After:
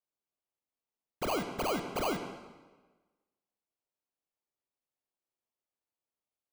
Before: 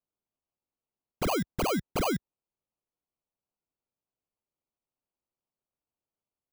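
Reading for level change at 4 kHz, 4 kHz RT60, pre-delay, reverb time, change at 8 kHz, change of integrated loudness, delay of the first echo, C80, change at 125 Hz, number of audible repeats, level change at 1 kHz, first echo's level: −3.0 dB, 1.1 s, 21 ms, 1.3 s, −5.0 dB, −4.0 dB, no echo audible, 9.0 dB, −9.0 dB, no echo audible, −2.5 dB, no echo audible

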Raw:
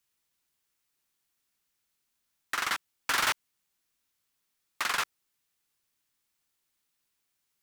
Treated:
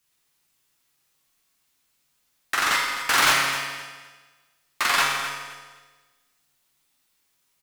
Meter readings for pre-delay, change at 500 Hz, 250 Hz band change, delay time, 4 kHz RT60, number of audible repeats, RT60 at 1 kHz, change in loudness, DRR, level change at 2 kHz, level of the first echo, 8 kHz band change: 7 ms, +10.5 dB, +10.5 dB, 257 ms, 1.4 s, 2, 1.4 s, +8.5 dB, −2.5 dB, +10.0 dB, −11.5 dB, +9.5 dB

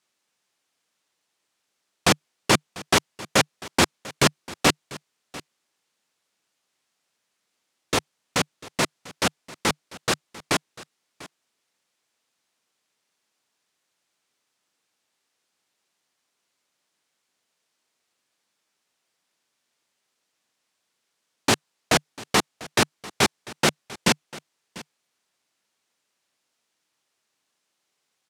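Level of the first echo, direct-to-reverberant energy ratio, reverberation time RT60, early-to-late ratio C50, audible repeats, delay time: −19.5 dB, no reverb audible, no reverb audible, no reverb audible, 1, 695 ms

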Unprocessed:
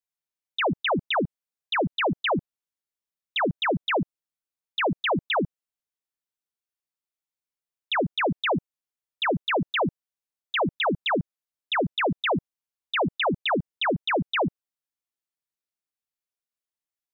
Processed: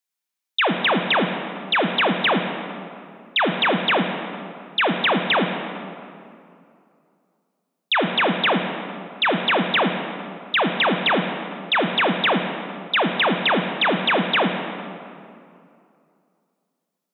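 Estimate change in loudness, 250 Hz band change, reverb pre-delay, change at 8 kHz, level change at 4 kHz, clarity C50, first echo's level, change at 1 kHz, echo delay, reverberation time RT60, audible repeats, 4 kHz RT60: +5.5 dB, +5.0 dB, 25 ms, can't be measured, +8.0 dB, 5.5 dB, no echo audible, +6.0 dB, no echo audible, 2.5 s, no echo audible, 1.5 s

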